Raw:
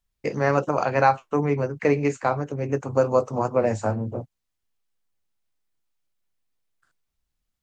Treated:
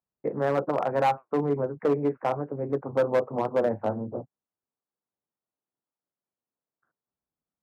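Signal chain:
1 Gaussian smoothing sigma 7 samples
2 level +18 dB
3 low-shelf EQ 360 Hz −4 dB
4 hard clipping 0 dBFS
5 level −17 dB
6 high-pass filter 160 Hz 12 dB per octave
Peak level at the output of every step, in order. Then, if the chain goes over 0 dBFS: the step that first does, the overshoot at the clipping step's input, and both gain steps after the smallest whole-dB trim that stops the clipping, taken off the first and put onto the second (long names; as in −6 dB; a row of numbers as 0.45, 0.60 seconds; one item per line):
−8.5, +9.5, +8.5, 0.0, −17.0, −13.0 dBFS
step 2, 8.5 dB
step 2 +9 dB, step 5 −8 dB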